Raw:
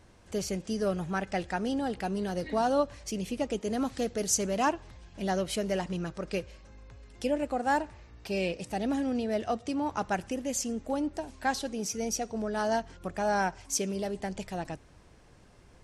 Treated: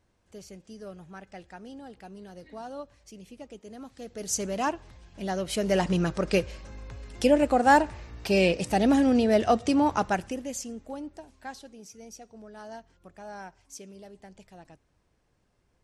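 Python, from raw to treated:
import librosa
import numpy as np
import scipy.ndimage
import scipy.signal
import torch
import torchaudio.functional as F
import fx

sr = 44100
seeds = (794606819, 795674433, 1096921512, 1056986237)

y = fx.gain(x, sr, db=fx.line((3.95, -13.0), (4.37, -1.0), (5.38, -1.0), (5.86, 8.5), (9.82, 8.5), (10.59, -4.0), (11.88, -14.0)))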